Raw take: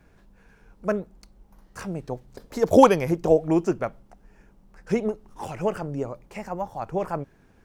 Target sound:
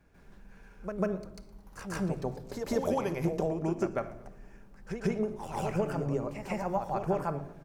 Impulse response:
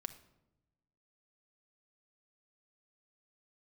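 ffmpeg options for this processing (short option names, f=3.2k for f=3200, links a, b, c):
-filter_complex "[0:a]acompressor=threshold=-26dB:ratio=10,asplit=5[a][b][c][d][e];[b]adelay=115,afreqshift=-58,volume=-21dB[f];[c]adelay=230,afreqshift=-116,volume=-26.2dB[g];[d]adelay=345,afreqshift=-174,volume=-31.4dB[h];[e]adelay=460,afreqshift=-232,volume=-36.6dB[i];[a][f][g][h][i]amix=inputs=5:normalize=0,asplit=2[j][k];[1:a]atrim=start_sample=2205,adelay=144[l];[k][l]afir=irnorm=-1:irlink=0,volume=10dB[m];[j][m]amix=inputs=2:normalize=0,volume=-7.5dB"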